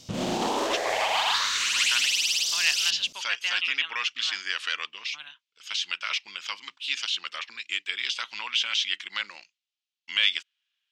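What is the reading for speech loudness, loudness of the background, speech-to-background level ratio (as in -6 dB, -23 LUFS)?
-28.5 LUFS, -24.0 LUFS, -4.5 dB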